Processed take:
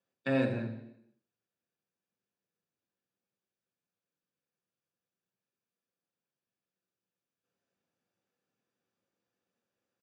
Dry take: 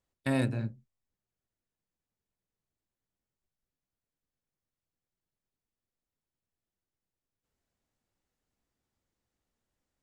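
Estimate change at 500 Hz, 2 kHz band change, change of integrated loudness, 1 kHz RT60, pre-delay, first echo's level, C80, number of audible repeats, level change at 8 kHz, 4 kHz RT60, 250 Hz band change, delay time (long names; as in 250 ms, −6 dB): +4.0 dB, +1.0 dB, −0.5 dB, 0.80 s, 3 ms, −12.0 dB, 9.0 dB, 1, −16.0 dB, 0.85 s, −0.5 dB, 82 ms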